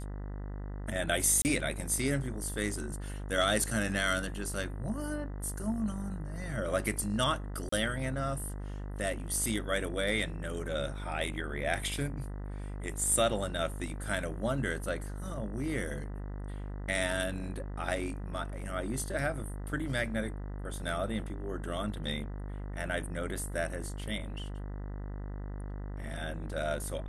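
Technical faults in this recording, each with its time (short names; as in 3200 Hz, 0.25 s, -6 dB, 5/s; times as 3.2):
buzz 50 Hz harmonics 40 -39 dBFS
1.42–1.45 gap 29 ms
7.69–7.72 gap 34 ms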